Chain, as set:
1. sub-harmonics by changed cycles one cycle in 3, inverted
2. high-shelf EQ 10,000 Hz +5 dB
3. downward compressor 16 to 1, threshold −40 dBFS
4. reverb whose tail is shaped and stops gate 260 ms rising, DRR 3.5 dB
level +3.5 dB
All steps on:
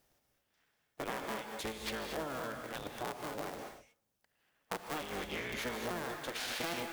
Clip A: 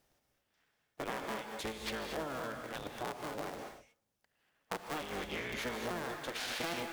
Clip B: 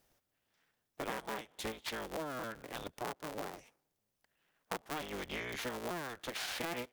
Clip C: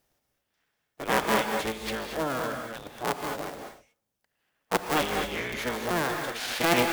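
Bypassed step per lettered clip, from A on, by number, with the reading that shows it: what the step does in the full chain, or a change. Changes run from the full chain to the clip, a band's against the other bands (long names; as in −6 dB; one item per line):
2, change in crest factor −3.5 dB
4, change in crest factor +1.5 dB
3, average gain reduction 8.5 dB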